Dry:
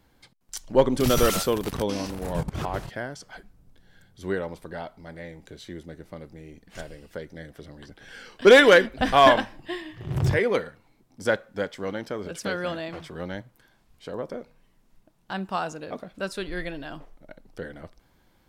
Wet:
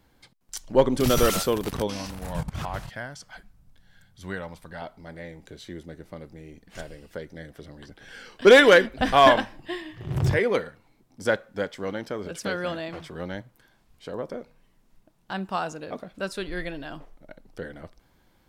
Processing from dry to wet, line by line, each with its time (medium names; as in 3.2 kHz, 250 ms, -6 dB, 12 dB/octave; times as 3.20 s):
1.87–4.82 s: peaking EQ 380 Hz -11 dB 1.1 oct